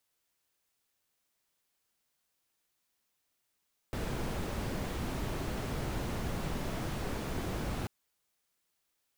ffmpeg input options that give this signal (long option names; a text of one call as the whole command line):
ffmpeg -f lavfi -i "anoisesrc=color=brown:amplitude=0.0832:duration=3.94:sample_rate=44100:seed=1" out.wav